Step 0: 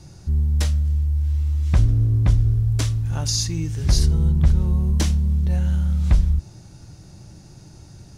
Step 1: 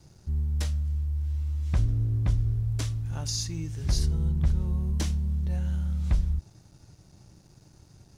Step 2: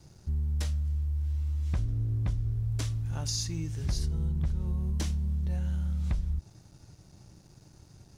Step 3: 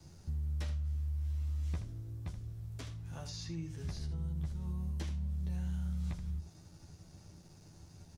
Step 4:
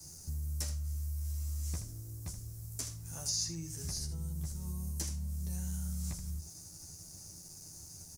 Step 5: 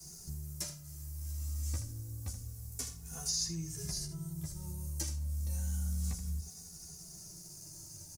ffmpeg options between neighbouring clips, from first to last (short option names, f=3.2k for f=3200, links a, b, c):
-af "aeval=exprs='sgn(val(0))*max(abs(val(0))-0.00266,0)':c=same,volume=-8dB"
-af "acompressor=threshold=-27dB:ratio=3"
-filter_complex "[0:a]acrossover=split=98|4200[a][b][c];[a]acompressor=threshold=-43dB:ratio=4[d];[b]acompressor=threshold=-39dB:ratio=4[e];[c]acompressor=threshold=-60dB:ratio=4[f];[d][e][f]amix=inputs=3:normalize=0,aecho=1:1:12|78:0.631|0.335,volume=-3dB"
-af "aexciter=amount=12:drive=3.7:freq=5.1k,volume=-1.5dB"
-filter_complex "[0:a]asplit=2[a][b];[b]adelay=2.4,afreqshift=-0.29[c];[a][c]amix=inputs=2:normalize=1,volume=3.5dB"